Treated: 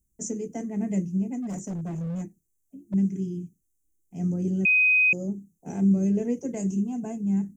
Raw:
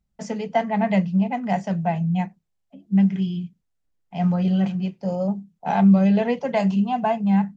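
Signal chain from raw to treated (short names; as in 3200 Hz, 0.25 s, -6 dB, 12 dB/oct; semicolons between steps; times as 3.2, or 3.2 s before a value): EQ curve 100 Hz 0 dB, 190 Hz -7 dB, 340 Hz +7 dB, 590 Hz -16 dB, 870 Hz -25 dB, 1200 Hz -22 dB, 2400 Hz -18 dB, 4200 Hz -29 dB, 6200 Hz +10 dB, 9400 Hz +14 dB; 1.42–2.94 hard clip -28.5 dBFS, distortion -22 dB; 4.65–5.13 bleep 2510 Hz -16.5 dBFS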